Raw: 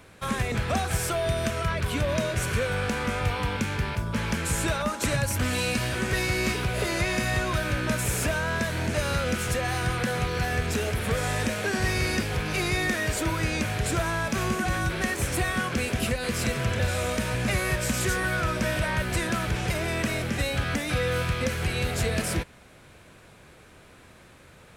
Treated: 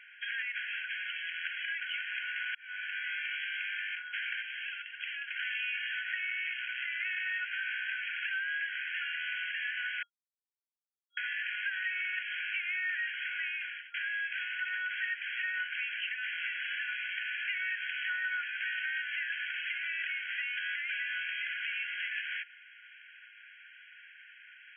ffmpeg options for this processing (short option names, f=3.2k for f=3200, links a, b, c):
-filter_complex "[0:a]asettb=1/sr,asplit=3[a][b][c];[a]atrim=end=0.664[d];[b]atrim=start=0.66:end=1.35,asetpts=PTS-STARTPTS,afade=t=in:d=0.004:c=qsin,afade=t=out:st=0.686:d=0.004:c=qsin,highpass=1.5k[e];[c]atrim=start=1.346[f];[d][e]acrossfade=d=0.004:c1=hsin:c2=qsin[g];[g][f]acrossfade=d=0.004:c1=qsin:c2=hsin,asettb=1/sr,asplit=3[h][i][j];[h]atrim=end=4.424[k];[i]atrim=start=4.42:end=5.27,asetpts=PTS-STARTPTS,afade=t=in:d=0.004:c=qsin,afade=t=out:st=0.846:d=0.004:c=qsin,acrossover=split=280|3000[l][m][n];[m]acompressor=threshold=-39dB:ratio=10:attack=3.2:release=140:knee=2.83:detection=peak[o];[l][o][n]amix=inputs=3:normalize=0[p];[j]atrim=start=5.266[q];[k][p]acrossfade=d=0.004:c1=hsin:c2=qsin[r];[r][q]acrossfade=d=0.004:c1=qsin:c2=hsin,asettb=1/sr,asplit=3[s][t][u];[s]atrim=end=5.994[v];[t]atrim=start=5.99:end=7.06,asetpts=PTS-STARTPTS,afade=t=in:d=0.004:c=qsin,afade=t=out:st=1.066:d=0.004:c=qsin,aeval=exprs='clip(val(0),-1,0.0266)':c=same[w];[u]atrim=start=7.056[x];[v][w]acrossfade=d=0.004:c1=hsin:c2=qsin[y];[y][x]acrossfade=d=0.004:c1=qsin:c2=hsin,asplit=5[z][aa][ab][ac][ad];[z]atrim=end=2.55,asetpts=PTS-STARTPTS,afade=t=out:st=2.546:d=0.004:c=hsin[ae];[aa]atrim=start=2.55:end=10.03,asetpts=PTS-STARTPTS,afade=t=in:d=0.65,afade=t=out:st=7.476:d=0.004:c=hsin[af];[ab]atrim=start=10.03:end=11.17,asetpts=PTS-STARTPTS,volume=0[ag];[ac]atrim=start=11.17:end=13.94,asetpts=PTS-STARTPTS,afade=t=in:d=0.004:c=hsin,afade=t=out:st=2.27:d=0.5[ah];[ad]atrim=start=13.94,asetpts=PTS-STARTPTS,afade=t=in:d=0.004:c=hsin[ai];[ae][af][ag][ah][ai]concat=n=5:v=0:a=1,afftfilt=real='re*between(b*sr/4096,1400,3300)':imag='im*between(b*sr/4096,1400,3300)':win_size=4096:overlap=0.75,acompressor=threshold=-40dB:ratio=2.5,volume=4.5dB"